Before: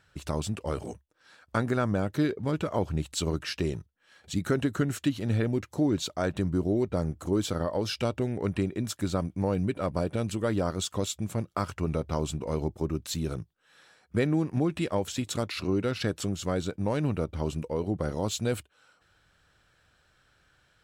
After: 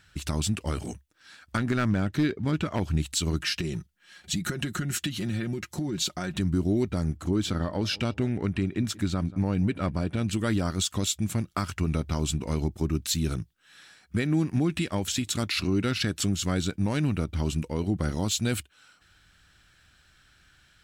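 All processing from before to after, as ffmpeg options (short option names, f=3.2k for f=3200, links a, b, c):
-filter_complex "[0:a]asettb=1/sr,asplit=3[a][b][c];[a]atrim=end=1.574[d];[b]atrim=start=1.57:end=2.8,asetpts=PTS-STARTPTS,afade=t=in:d=0.004:c=qsin,afade=t=out:st=1.226:d=0.004:c=qsin,highshelf=f=7.2k:g=-12,volume=19.5dB,asoftclip=hard,volume=-19.5dB[e];[c]atrim=start=2.796[f];[d][e]acrossfade=d=0.004:c1=hsin:c2=qsin[g];[g][f]acrossfade=d=0.004:c1=qsin:c2=hsin,asettb=1/sr,asplit=3[h][i][j];[h]atrim=end=3.404[k];[i]atrim=start=3.4:end=6.4,asetpts=PTS-STARTPTS,afade=t=in:d=0.004:c=qsin,afade=t=out:st=2.996:d=0.004:c=qsin,aecho=1:1:5.6:0.55,atrim=end_sample=132300,acompressor=threshold=-29dB:ratio=10:attack=3.2:release=140:knee=1:detection=peak[l];[j]atrim=start=6.396[m];[k][l]acrossfade=d=0.004:c1=hsin:c2=qsin[n];[n][m]acrossfade=d=0.004:c1=qsin:c2=hsin,asettb=1/sr,asplit=3[o][p][q];[o]atrim=end=7.174[r];[p]atrim=start=7.17:end=10.33,asetpts=PTS-STARTPTS,afade=t=in:d=0.004:c=qsin,afade=t=out:st=3.156:d=0.004:c=qsin,highshelf=f=5.7k:g=-11.5,asplit=2[s][t];[t]adelay=181,lowpass=f=1.9k:p=1,volume=-21dB,asplit=2[u][v];[v]adelay=181,lowpass=f=1.9k:p=1,volume=0.36,asplit=2[w][x];[x]adelay=181,lowpass=f=1.9k:p=1,volume=0.36[y];[s][u][w][y]amix=inputs=4:normalize=0,atrim=end_sample=139356[z];[q]atrim=start=10.326[aa];[r][z]acrossfade=d=0.004:c1=hsin:c2=qsin[ab];[ab][aa]acrossfade=d=0.004:c1=qsin:c2=hsin,equalizer=f=125:t=o:w=1:g=-4,equalizer=f=500:t=o:w=1:g=-12,equalizer=f=1k:t=o:w=1:g=-6,alimiter=limit=-23.5dB:level=0:latency=1:release=140,volume=8dB"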